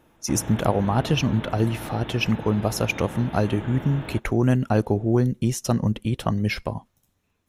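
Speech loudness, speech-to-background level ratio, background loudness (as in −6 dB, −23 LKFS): −24.0 LKFS, 12.5 dB, −36.5 LKFS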